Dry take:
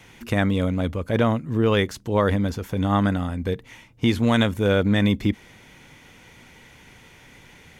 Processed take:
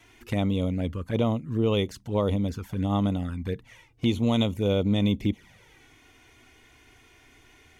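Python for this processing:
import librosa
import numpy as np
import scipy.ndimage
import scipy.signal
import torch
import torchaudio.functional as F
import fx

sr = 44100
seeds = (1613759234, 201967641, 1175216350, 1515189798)

y = fx.env_flanger(x, sr, rest_ms=3.1, full_db=-18.0)
y = y * 10.0 ** (-3.5 / 20.0)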